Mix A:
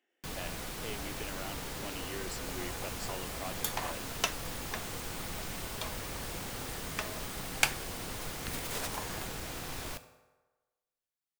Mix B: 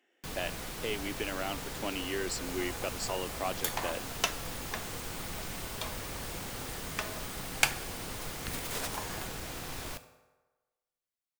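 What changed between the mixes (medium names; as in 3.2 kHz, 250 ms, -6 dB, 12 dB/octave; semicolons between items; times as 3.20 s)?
speech +8.0 dB; second sound: send on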